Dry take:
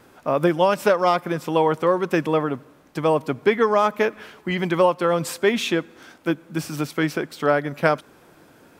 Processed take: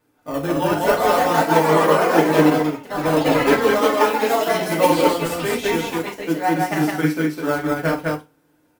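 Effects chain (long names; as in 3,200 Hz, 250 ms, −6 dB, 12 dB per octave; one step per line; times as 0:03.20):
on a send: loudspeakers that aren't time-aligned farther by 17 metres −8 dB, 71 metres −1 dB
on the sum: delay with pitch and tempo change per echo 491 ms, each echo +4 semitones, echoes 3
in parallel at −11 dB: sample-and-hold swept by an LFO 22×, swing 160% 0.4 Hz
on the sum: high-shelf EQ 11,000 Hz +10 dB
feedback delay network reverb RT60 0.35 s, low-frequency decay 1.1×, high-frequency decay 0.9×, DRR −1 dB
expander for the loud parts 1.5 to 1, over −35 dBFS
level −5 dB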